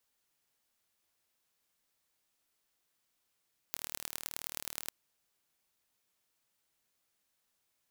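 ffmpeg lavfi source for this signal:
ffmpeg -f lavfi -i "aevalsrc='0.376*eq(mod(n,1148),0)*(0.5+0.5*eq(mod(n,4592),0))':duration=1.17:sample_rate=44100" out.wav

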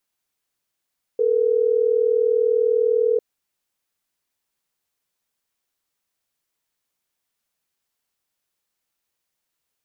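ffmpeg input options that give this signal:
ffmpeg -f lavfi -i "aevalsrc='0.119*(sin(2*PI*440*t)+sin(2*PI*480*t))*clip(min(mod(t,6),2-mod(t,6))/0.005,0,1)':duration=3.12:sample_rate=44100" out.wav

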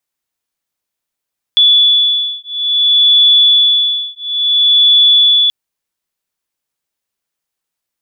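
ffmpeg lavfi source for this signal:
ffmpeg -f lavfi -i "aevalsrc='0.299*(sin(2*PI*3440*t)+sin(2*PI*3440.58*t))':duration=3.93:sample_rate=44100" out.wav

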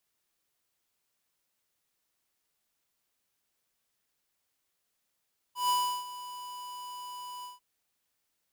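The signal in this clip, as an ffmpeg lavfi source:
ffmpeg -f lavfi -i "aevalsrc='0.0501*(2*lt(mod(989*t,1),0.5)-1)':duration=2.044:sample_rate=44100,afade=type=in:duration=0.142,afade=type=out:start_time=0.142:duration=0.347:silence=0.158,afade=type=out:start_time=1.89:duration=0.154" out.wav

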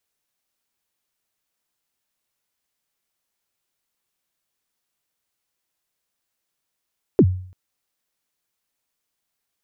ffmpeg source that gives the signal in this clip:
ffmpeg -f lavfi -i "aevalsrc='0.473*pow(10,-3*t/0.53)*sin(2*PI*(460*0.059/log(92/460)*(exp(log(92/460)*min(t,0.059)/0.059)-1)+92*max(t-0.059,0)))':duration=0.34:sample_rate=44100" out.wav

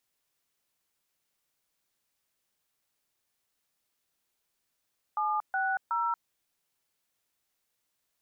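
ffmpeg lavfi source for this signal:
ffmpeg -f lavfi -i "aevalsrc='0.0355*clip(min(mod(t,0.369),0.232-mod(t,0.369))/0.002,0,1)*(eq(floor(t/0.369),0)*(sin(2*PI*852*mod(t,0.369))+sin(2*PI*1209*mod(t,0.369)))+eq(floor(t/0.369),1)*(sin(2*PI*770*mod(t,0.369))+sin(2*PI*1477*mod(t,0.369)))+eq(floor(t/0.369),2)*(sin(2*PI*941*mod(t,0.369))+sin(2*PI*1336*mod(t,0.369))))':duration=1.107:sample_rate=44100" out.wav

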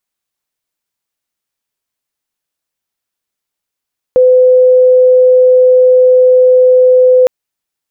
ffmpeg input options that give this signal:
ffmpeg -f lavfi -i "aevalsrc='0.708*sin(2*PI*507*t)':duration=3.11:sample_rate=44100" out.wav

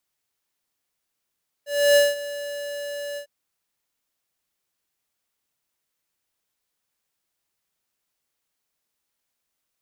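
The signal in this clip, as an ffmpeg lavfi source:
ffmpeg -f lavfi -i "aevalsrc='0.188*(2*lt(mod(576*t,1),0.5)-1)':duration=1.602:sample_rate=44100,afade=type=in:duration=0.299,afade=type=out:start_time=0.299:duration=0.189:silence=0.141,afade=type=out:start_time=1.51:duration=0.092" out.wav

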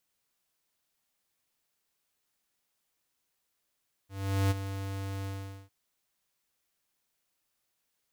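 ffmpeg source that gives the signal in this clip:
ffmpeg -f lavfi -i "aevalsrc='0.0562*(2*lt(mod(97.6*t,1),0.5)-1)':duration=1.603:sample_rate=44100,afade=type=in:duration=0.417,afade=type=out:start_time=0.417:duration=0.024:silence=0.282,afade=type=out:start_time=1.17:duration=0.433" out.wav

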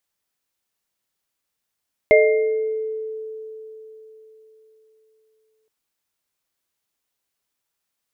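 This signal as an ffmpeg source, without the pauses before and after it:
ffmpeg -f lavfi -i "aevalsrc='0.237*pow(10,-3*t/4.01)*sin(2*PI*438*t)+0.355*pow(10,-3*t/0.83)*sin(2*PI*616*t)+0.168*pow(10,-3*t/0.91)*sin(2*PI*2110*t)':duration=3.57:sample_rate=44100" out.wav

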